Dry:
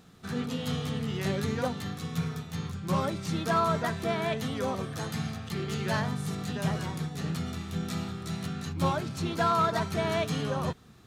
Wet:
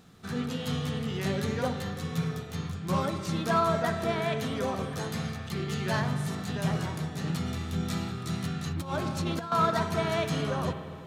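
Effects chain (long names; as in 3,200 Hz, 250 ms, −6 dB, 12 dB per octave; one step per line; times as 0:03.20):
spring reverb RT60 2.4 s, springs 48/57 ms, chirp 60 ms, DRR 8 dB
0:07.27–0:09.52: compressor whose output falls as the input rises −29 dBFS, ratio −0.5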